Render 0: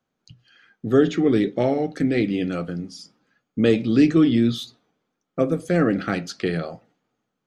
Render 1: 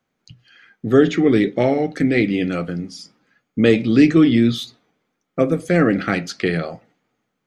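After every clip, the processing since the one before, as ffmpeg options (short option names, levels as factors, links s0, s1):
-af "equalizer=f=2100:t=o:w=0.48:g=6,volume=1.5"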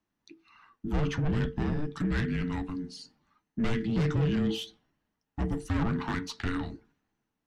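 -af "aeval=exprs='(tanh(6.31*val(0)+0.35)-tanh(0.35))/6.31':c=same,afreqshift=-450,volume=0.422"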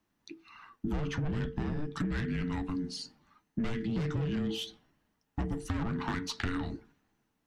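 -af "acompressor=threshold=0.0178:ratio=6,volume=1.78"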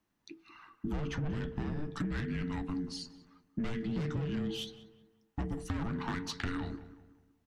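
-filter_complex "[0:a]asplit=2[s0][s1];[s1]adelay=187,lowpass=f=1900:p=1,volume=0.2,asplit=2[s2][s3];[s3]adelay=187,lowpass=f=1900:p=1,volume=0.42,asplit=2[s4][s5];[s5]adelay=187,lowpass=f=1900:p=1,volume=0.42,asplit=2[s6][s7];[s7]adelay=187,lowpass=f=1900:p=1,volume=0.42[s8];[s0][s2][s4][s6][s8]amix=inputs=5:normalize=0,volume=0.75"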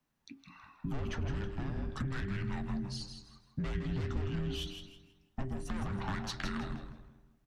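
-filter_complex "[0:a]asplit=5[s0][s1][s2][s3][s4];[s1]adelay=161,afreqshift=-92,volume=0.422[s5];[s2]adelay=322,afreqshift=-184,volume=0.126[s6];[s3]adelay=483,afreqshift=-276,volume=0.038[s7];[s4]adelay=644,afreqshift=-368,volume=0.0114[s8];[s0][s5][s6][s7][s8]amix=inputs=5:normalize=0,afreqshift=-54,volume=0.891"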